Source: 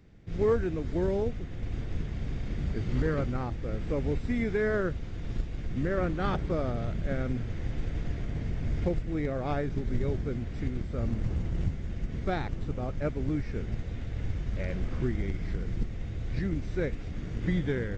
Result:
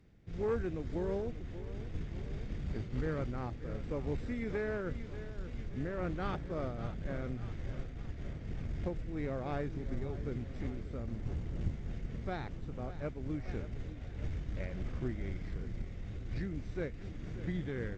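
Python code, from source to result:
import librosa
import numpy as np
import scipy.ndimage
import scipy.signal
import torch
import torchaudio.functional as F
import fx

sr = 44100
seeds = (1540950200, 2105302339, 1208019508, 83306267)

p1 = fx.tube_stage(x, sr, drive_db=20.0, bias=0.5)
p2 = p1 + fx.echo_feedback(p1, sr, ms=585, feedback_pct=55, wet_db=-13.5, dry=0)
p3 = fx.am_noise(p2, sr, seeds[0], hz=5.7, depth_pct=65)
y = p3 * librosa.db_to_amplitude(-1.5)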